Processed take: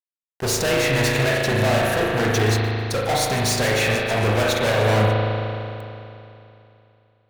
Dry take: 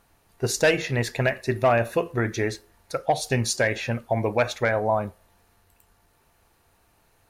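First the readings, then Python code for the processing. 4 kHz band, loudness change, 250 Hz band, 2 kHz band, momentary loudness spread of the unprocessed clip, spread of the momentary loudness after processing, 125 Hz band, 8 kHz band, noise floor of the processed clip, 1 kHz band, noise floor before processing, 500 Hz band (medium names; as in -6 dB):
+9.0 dB, +4.5 dB, +5.0 dB, +5.0 dB, 8 LU, 10 LU, +7.5 dB, +5.5 dB, under -85 dBFS, +3.5 dB, -64 dBFS, +3.5 dB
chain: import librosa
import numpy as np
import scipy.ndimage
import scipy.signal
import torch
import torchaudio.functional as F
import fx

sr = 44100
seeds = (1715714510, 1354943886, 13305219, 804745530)

y = fx.echo_wet_highpass(x, sr, ms=149, feedback_pct=70, hz=4000.0, wet_db=-13)
y = fx.fuzz(y, sr, gain_db=36.0, gate_db=-45.0)
y = fx.rev_spring(y, sr, rt60_s=2.9, pass_ms=(37,), chirp_ms=25, drr_db=-2.5)
y = y * 10.0 ** (-8.0 / 20.0)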